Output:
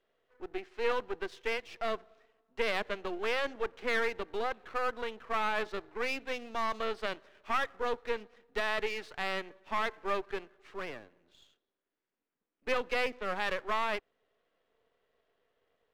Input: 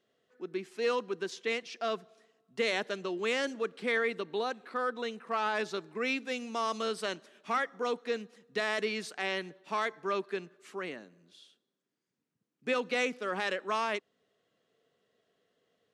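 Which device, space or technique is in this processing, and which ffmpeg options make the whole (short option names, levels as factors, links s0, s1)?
crystal radio: -af "highpass=370,lowpass=2700,aeval=exprs='if(lt(val(0),0),0.251*val(0),val(0))':c=same,volume=1.58"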